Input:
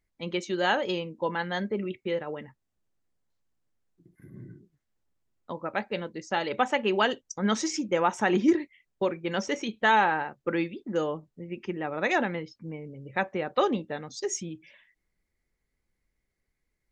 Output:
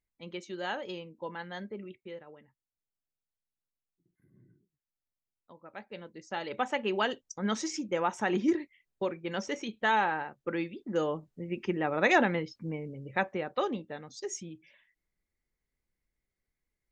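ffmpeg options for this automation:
-af "volume=9.5dB,afade=t=out:st=1.63:d=0.78:silence=0.421697,afade=t=in:st=5.63:d=1.14:silence=0.237137,afade=t=in:st=10.64:d=0.96:silence=0.446684,afade=t=out:st=12.74:d=0.88:silence=0.375837"

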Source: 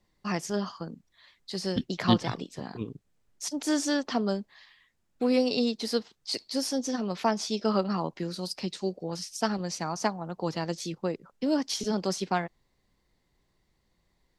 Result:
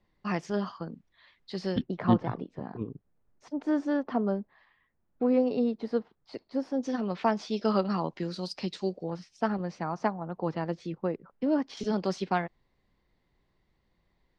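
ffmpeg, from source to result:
-af "asetnsamples=n=441:p=0,asendcmd='1.82 lowpass f 1300;6.83 lowpass f 2900;7.56 lowpass f 4700;9.1 lowpass f 1900;11.77 lowpass f 3500',lowpass=3.2k"

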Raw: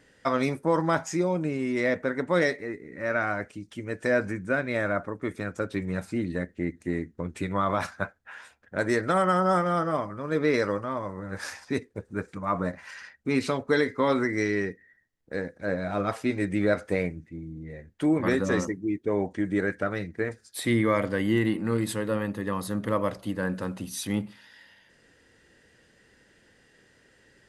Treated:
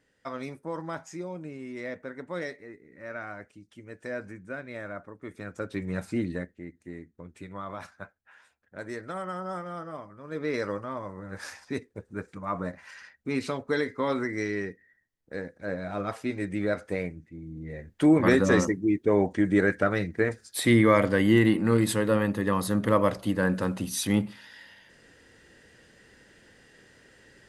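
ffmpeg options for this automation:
-af "volume=16.5dB,afade=t=in:st=5.2:d=1:silence=0.266073,afade=t=out:st=6.2:d=0.4:silence=0.237137,afade=t=in:st=10.17:d=0.54:silence=0.398107,afade=t=in:st=17.37:d=0.52:silence=0.398107"

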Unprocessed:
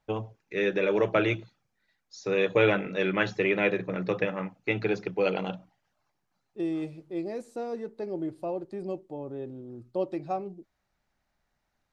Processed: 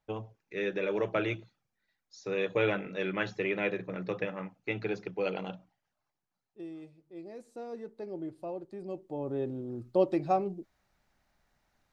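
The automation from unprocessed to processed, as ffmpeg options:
-af "volume=14dB,afade=t=out:st=5.47:d=1.51:silence=0.316228,afade=t=in:st=6.98:d=0.84:silence=0.316228,afade=t=in:st=8.89:d=0.47:silence=0.316228"

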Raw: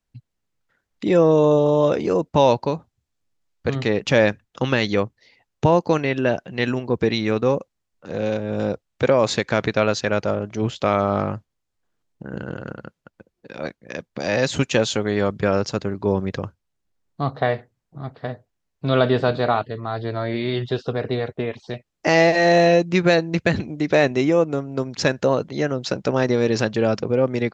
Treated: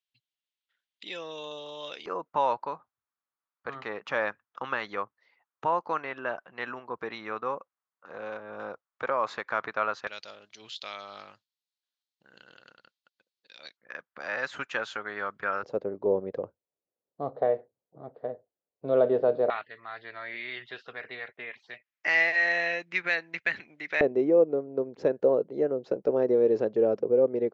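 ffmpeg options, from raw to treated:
-af "asetnsamples=n=441:p=0,asendcmd='2.06 bandpass f 1200;10.07 bandpass f 4000;13.77 bandpass f 1400;15.63 bandpass f 510;19.5 bandpass f 2000;24.01 bandpass f 450',bandpass=f=3.3k:t=q:w=2.8:csg=0"

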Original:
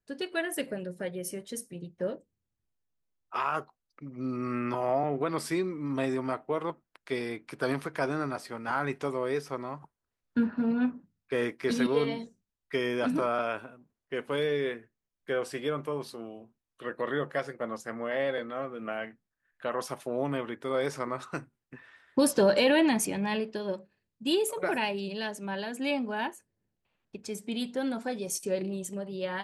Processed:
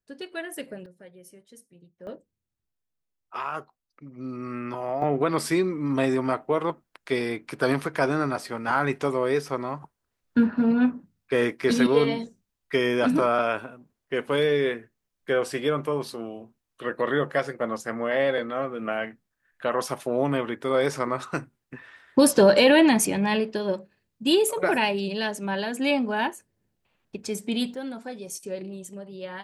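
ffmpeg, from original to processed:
-af "asetnsamples=n=441:p=0,asendcmd='0.86 volume volume -13dB;2.07 volume volume -1.5dB;5.02 volume volume 6.5dB;27.74 volume volume -3dB',volume=-3dB"

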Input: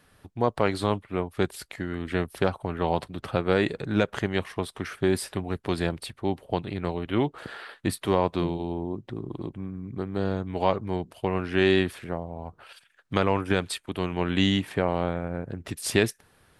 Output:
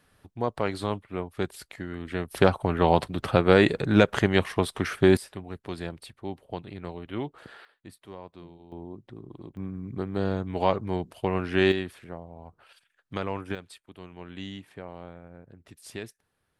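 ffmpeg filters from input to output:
-af "asetnsamples=n=441:p=0,asendcmd='2.31 volume volume 5dB;5.17 volume volume -8dB;7.65 volume volume -20dB;8.72 volume volume -9dB;9.57 volume volume 0dB;11.72 volume volume -8dB;13.55 volume volume -16dB',volume=-4dB"

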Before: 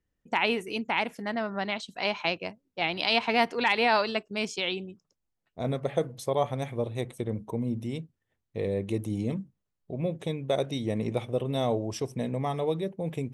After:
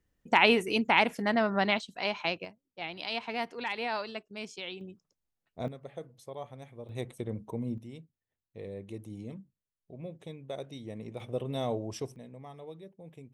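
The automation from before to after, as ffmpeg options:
-af "asetnsamples=n=441:p=0,asendcmd='1.79 volume volume -3dB;2.45 volume volume -10dB;4.81 volume volume -3.5dB;5.68 volume volume -15dB;6.89 volume volume -4.5dB;7.78 volume volume -12dB;11.2 volume volume -5dB;12.16 volume volume -17dB',volume=4dB"

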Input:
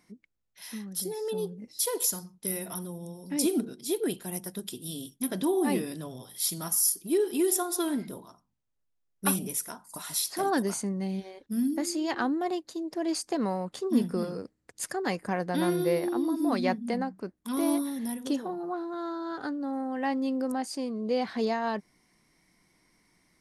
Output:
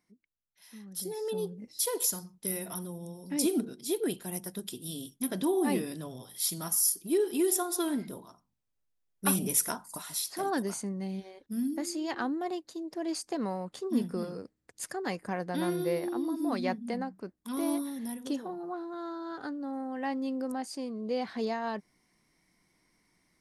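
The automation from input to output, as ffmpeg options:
-af "volume=7dB,afade=t=in:st=0.7:d=0.48:silence=0.281838,afade=t=in:st=9.27:d=0.43:silence=0.375837,afade=t=out:st=9.7:d=0.35:silence=0.281838"

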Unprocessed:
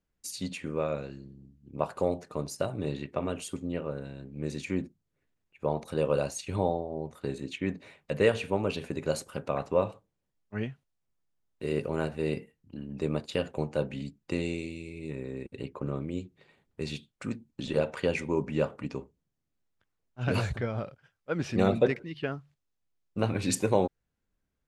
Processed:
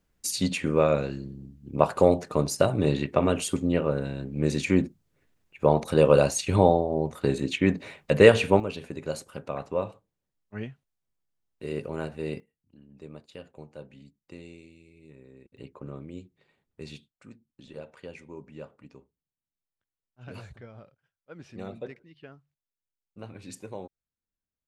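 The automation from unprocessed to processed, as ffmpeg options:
-af "asetnsamples=n=441:p=0,asendcmd='8.6 volume volume -2.5dB;12.4 volume volume -14dB;15.57 volume volume -6.5dB;17.08 volume volume -14.5dB',volume=9dB"

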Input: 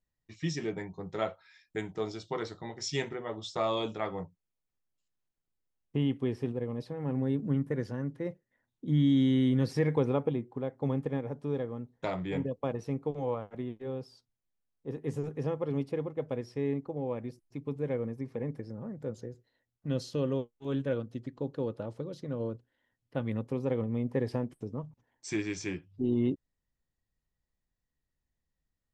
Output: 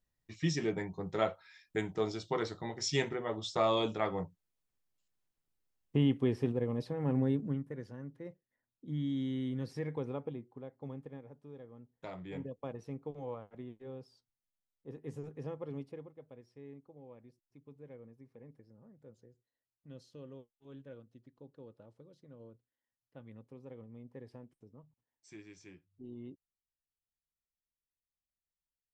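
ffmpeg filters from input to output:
-af "volume=10dB,afade=t=out:st=7.19:d=0.45:silence=0.266073,afade=t=out:st=10.3:d=1.23:silence=0.421697,afade=t=in:st=11.53:d=0.9:silence=0.354813,afade=t=out:st=15.67:d=0.53:silence=0.316228"

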